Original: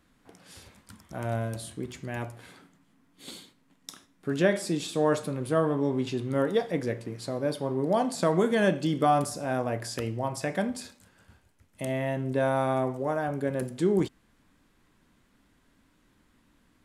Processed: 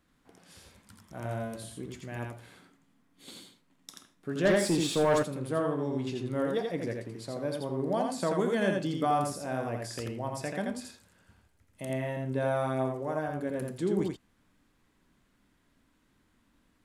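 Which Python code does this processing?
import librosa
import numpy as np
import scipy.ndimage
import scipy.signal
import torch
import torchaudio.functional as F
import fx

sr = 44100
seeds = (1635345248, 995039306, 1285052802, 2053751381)

y = x + 10.0 ** (-3.5 / 20.0) * np.pad(x, (int(84 * sr / 1000.0), 0))[:len(x)]
y = fx.leveller(y, sr, passes=2, at=(4.45, 5.23))
y = y * librosa.db_to_amplitude(-5.5)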